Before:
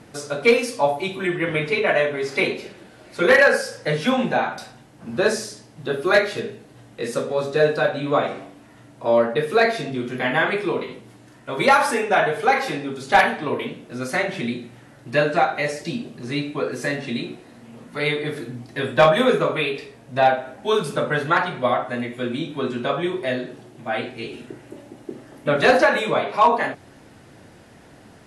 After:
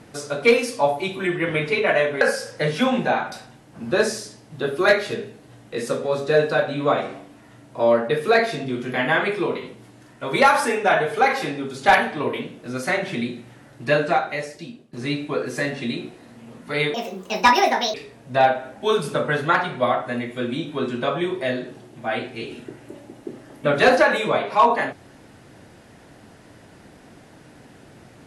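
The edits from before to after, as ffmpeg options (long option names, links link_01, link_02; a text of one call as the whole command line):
ffmpeg -i in.wav -filter_complex "[0:a]asplit=5[link_01][link_02][link_03][link_04][link_05];[link_01]atrim=end=2.212[link_06];[link_02]atrim=start=3.468:end=16.19,asetpts=PTS-STARTPTS,afade=type=out:start_time=11.782:duration=0.94:silence=0.0891251[link_07];[link_03]atrim=start=16.19:end=18.204,asetpts=PTS-STARTPTS,afade=type=in:duration=0.004:curve=hsin:silence=0.0891251[link_08];[link_04]atrim=start=18.2:end=19.76,asetpts=PTS-STARTPTS,asetrate=68796,aresample=44100[link_09];[link_05]atrim=start=19.756[link_10];[link_07][link_08]concat=n=2:v=0:a=1[link_11];[link_06][link_11]acrossfade=duration=0.004:curve1=hsin:curve2=hsin[link_12];[link_12][link_09]acrossfade=duration=0.004:curve1=hsin:curve2=hsin[link_13];[link_13][link_10]acrossfade=duration=0.004:curve1=hsin:curve2=hsin" out.wav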